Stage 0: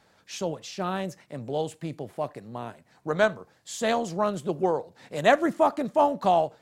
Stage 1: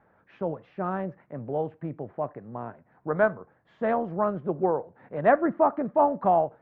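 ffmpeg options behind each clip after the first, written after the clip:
-af "lowpass=f=1.7k:w=0.5412,lowpass=f=1.7k:w=1.3066"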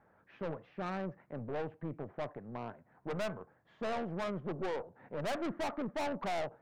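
-af "aeval=exprs='(tanh(35.5*val(0)+0.45)-tanh(0.45))/35.5':c=same,volume=-2.5dB"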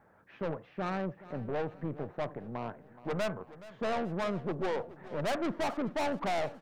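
-af "aecho=1:1:423|846|1269|1692:0.133|0.0613|0.0282|0.013,volume=4dB"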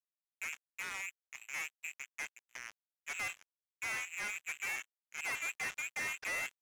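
-filter_complex "[0:a]asplit=2[a][b];[b]adelay=300,highpass=300,lowpass=3.4k,asoftclip=type=hard:threshold=-35dB,volume=-15dB[c];[a][c]amix=inputs=2:normalize=0,lowpass=f=2.3k:t=q:w=0.5098,lowpass=f=2.3k:t=q:w=0.6013,lowpass=f=2.3k:t=q:w=0.9,lowpass=f=2.3k:t=q:w=2.563,afreqshift=-2700,acrusher=bits=4:mix=0:aa=0.5,volume=-7.5dB"

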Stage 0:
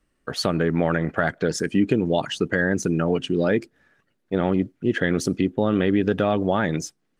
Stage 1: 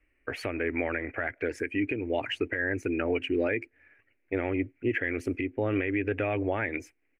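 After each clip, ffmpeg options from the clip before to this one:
-af "firequalizer=gain_entry='entry(110,0);entry(160,-27);entry(270,-2);entry(1200,-8);entry(2300,13);entry(3500,-18);entry(6500,-18);entry(11000,-11)':delay=0.05:min_phase=1,alimiter=limit=-17.5dB:level=0:latency=1:release=372"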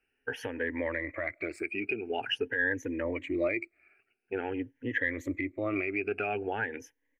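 -af "afftfilt=real='re*pow(10,17/40*sin(2*PI*(1.1*log(max(b,1)*sr/1024/100)/log(2)-(0.47)*(pts-256)/sr)))':imag='im*pow(10,17/40*sin(2*PI*(1.1*log(max(b,1)*sr/1024/100)/log(2)-(0.47)*(pts-256)/sr)))':win_size=1024:overlap=0.75,lowshelf=f=190:g=-7,aeval=exprs='0.251*(cos(1*acos(clip(val(0)/0.251,-1,1)))-cos(1*PI/2))+0.00708*(cos(2*acos(clip(val(0)/0.251,-1,1)))-cos(2*PI/2))':c=same,volume=-5dB"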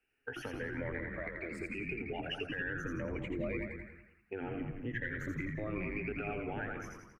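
-filter_complex "[0:a]asplit=2[a][b];[b]asplit=5[c][d][e][f][g];[c]adelay=84,afreqshift=-130,volume=-4dB[h];[d]adelay=168,afreqshift=-260,volume=-11.5dB[i];[e]adelay=252,afreqshift=-390,volume=-19.1dB[j];[f]adelay=336,afreqshift=-520,volume=-26.6dB[k];[g]adelay=420,afreqshift=-650,volume=-34.1dB[l];[h][i][j][k][l]amix=inputs=5:normalize=0[m];[a][m]amix=inputs=2:normalize=0,acrossover=split=170[n][o];[o]acompressor=threshold=-39dB:ratio=2[p];[n][p]amix=inputs=2:normalize=0,asplit=2[q][r];[r]adelay=190,lowpass=f=3.2k:p=1,volume=-9dB,asplit=2[s][t];[t]adelay=190,lowpass=f=3.2k:p=1,volume=0.25,asplit=2[u][v];[v]adelay=190,lowpass=f=3.2k:p=1,volume=0.25[w];[s][u][w]amix=inputs=3:normalize=0[x];[q][x]amix=inputs=2:normalize=0,volume=-3dB"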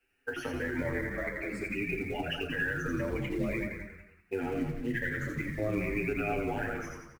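-filter_complex "[0:a]asplit=2[a][b];[b]acrusher=bits=4:mode=log:mix=0:aa=0.000001,volume=-4.5dB[c];[a][c]amix=inputs=2:normalize=0,asplit=2[d][e];[e]adelay=36,volume=-11dB[f];[d][f]amix=inputs=2:normalize=0,asplit=2[g][h];[h]adelay=7.8,afreqshift=-0.48[i];[g][i]amix=inputs=2:normalize=1,volume=4dB"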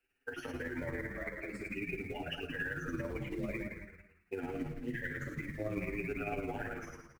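-af "tremolo=f=18:d=0.47,volume=-4dB"

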